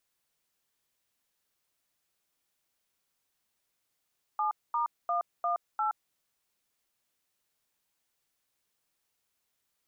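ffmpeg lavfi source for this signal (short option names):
-f lavfi -i "aevalsrc='0.0355*clip(min(mod(t,0.35),0.121-mod(t,0.35))/0.002,0,1)*(eq(floor(t/0.35),0)*(sin(2*PI*852*mod(t,0.35))+sin(2*PI*1209*mod(t,0.35)))+eq(floor(t/0.35),1)*(sin(2*PI*941*mod(t,0.35))+sin(2*PI*1209*mod(t,0.35)))+eq(floor(t/0.35),2)*(sin(2*PI*697*mod(t,0.35))+sin(2*PI*1209*mod(t,0.35)))+eq(floor(t/0.35),3)*(sin(2*PI*697*mod(t,0.35))+sin(2*PI*1209*mod(t,0.35)))+eq(floor(t/0.35),4)*(sin(2*PI*852*mod(t,0.35))+sin(2*PI*1336*mod(t,0.35))))':d=1.75:s=44100"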